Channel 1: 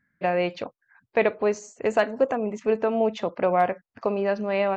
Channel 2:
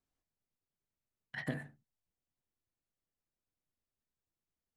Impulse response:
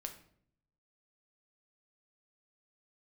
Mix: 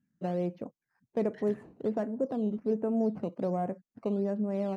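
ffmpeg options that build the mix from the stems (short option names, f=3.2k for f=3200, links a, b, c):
-filter_complex "[0:a]acrusher=samples=9:mix=1:aa=0.000001:lfo=1:lforange=9:lforate=1.3,asoftclip=type=tanh:threshold=-11.5dB,bandpass=f=200:t=q:w=1.3:csg=0,volume=1dB[a];[1:a]equalizer=f=6.5k:w=2.3:g=12,volume=-12dB[b];[a][b]amix=inputs=2:normalize=0"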